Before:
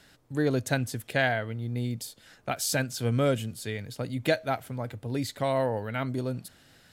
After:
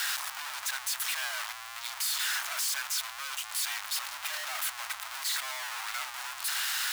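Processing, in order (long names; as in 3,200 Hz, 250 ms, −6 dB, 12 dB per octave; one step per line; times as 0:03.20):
sign of each sample alone
frequency shifter −35 Hz
inverse Chebyshev high-pass filter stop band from 470 Hz, stop band 40 dB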